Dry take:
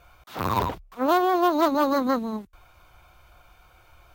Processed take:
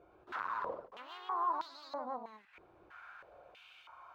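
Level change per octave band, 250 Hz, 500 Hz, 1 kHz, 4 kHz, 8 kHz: -30.0 dB, -21.0 dB, -13.0 dB, -15.5 dB, under -25 dB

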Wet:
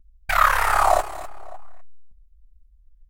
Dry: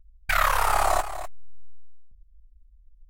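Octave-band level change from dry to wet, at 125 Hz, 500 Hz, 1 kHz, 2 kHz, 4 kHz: 0.0 dB, +4.5 dB, +4.5 dB, +4.0 dB, +0.5 dB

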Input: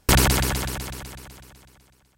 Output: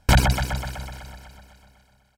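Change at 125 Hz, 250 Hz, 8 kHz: +1.5 dB, -2.0 dB, -8.0 dB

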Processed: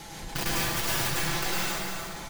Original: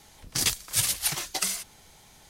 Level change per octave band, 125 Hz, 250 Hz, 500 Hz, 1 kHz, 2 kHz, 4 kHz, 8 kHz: +5.5 dB, +8.5 dB, +9.5 dB, +8.0 dB, +5.5 dB, -1.5 dB, -6.0 dB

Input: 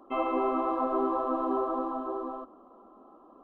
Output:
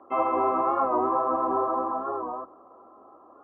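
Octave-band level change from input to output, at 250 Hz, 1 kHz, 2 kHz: -1.0 dB, +6.0 dB, no reading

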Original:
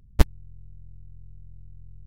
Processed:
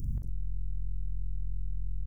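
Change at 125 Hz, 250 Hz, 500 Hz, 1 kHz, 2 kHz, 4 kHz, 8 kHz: -5.0 dB, -13.5 dB, under -25 dB, under -35 dB, under -40 dB, under -35 dB, under -20 dB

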